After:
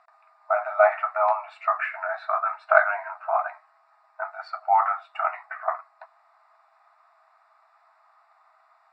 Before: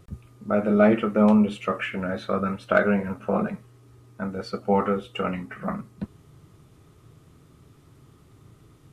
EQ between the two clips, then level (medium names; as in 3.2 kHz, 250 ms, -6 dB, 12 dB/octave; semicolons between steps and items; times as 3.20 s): boxcar filter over 14 samples; brick-wall FIR high-pass 630 Hz; distance through air 81 m; +9.0 dB